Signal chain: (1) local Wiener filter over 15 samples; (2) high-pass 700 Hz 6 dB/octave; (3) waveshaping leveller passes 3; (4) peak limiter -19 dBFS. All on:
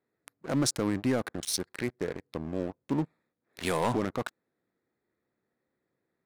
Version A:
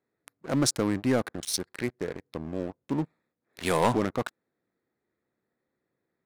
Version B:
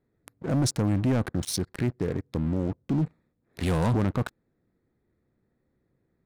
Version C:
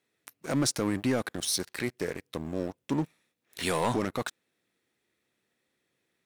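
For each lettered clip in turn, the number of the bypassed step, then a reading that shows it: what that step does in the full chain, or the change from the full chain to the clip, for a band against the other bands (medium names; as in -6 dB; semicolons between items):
4, crest factor change +3.5 dB; 2, 125 Hz band +11.5 dB; 1, 4 kHz band +2.0 dB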